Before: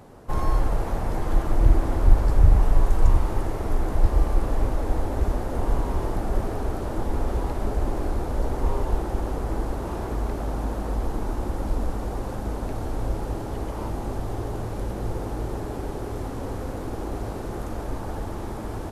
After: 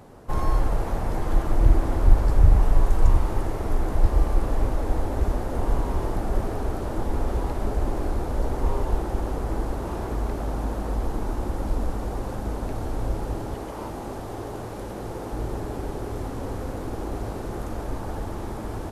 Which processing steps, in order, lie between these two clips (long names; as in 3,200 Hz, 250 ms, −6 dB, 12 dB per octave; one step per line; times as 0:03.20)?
0:13.54–0:15.33: low-shelf EQ 120 Hz −11.5 dB